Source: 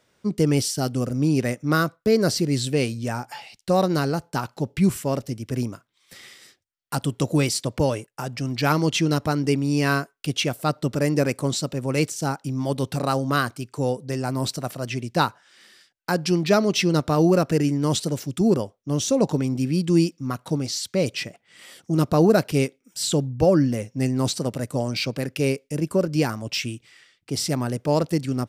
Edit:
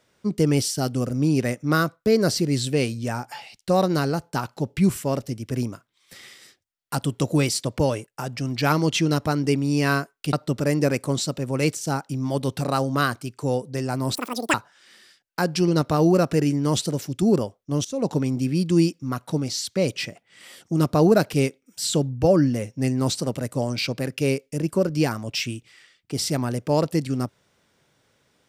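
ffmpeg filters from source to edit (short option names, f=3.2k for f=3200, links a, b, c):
-filter_complex "[0:a]asplit=6[a][b][c][d][e][f];[a]atrim=end=10.332[g];[b]atrim=start=10.678:end=14.504[h];[c]atrim=start=14.5:end=15.24,asetpts=PTS-STARTPTS,asetrate=84231,aresample=44100[i];[d]atrim=start=15.236:end=16.382[j];[e]atrim=start=16.858:end=19.03,asetpts=PTS-STARTPTS,afade=t=out:st=2.168:d=0.004:c=hsin:silence=0.11885[k];[f]atrim=start=19.03,asetpts=PTS-STARTPTS,afade=t=in:d=0.32:silence=0.11885[l];[g][h]acrossfade=d=0.004:c1=hsin:c2=hsin[m];[m][i]acrossfade=d=0.004:c1=hsin:c2=hsin[n];[n][j]acrossfade=d=0.004:c1=hsin:c2=hsin[o];[k][l]concat=n=2:v=0:a=1[p];[o][p]acrossfade=d=0.004:c1=hsin:c2=hsin"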